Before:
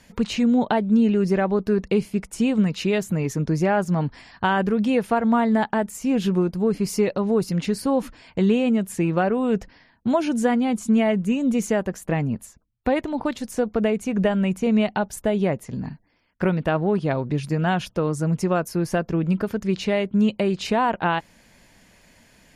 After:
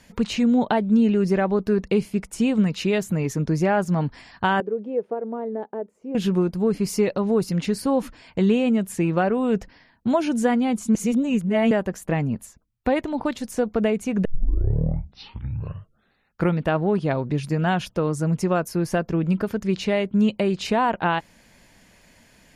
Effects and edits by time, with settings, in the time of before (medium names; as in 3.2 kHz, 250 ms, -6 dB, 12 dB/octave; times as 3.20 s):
4.60–6.15 s: band-pass filter 440 Hz, Q 3.3
10.95–11.71 s: reverse
14.25 s: tape start 2.36 s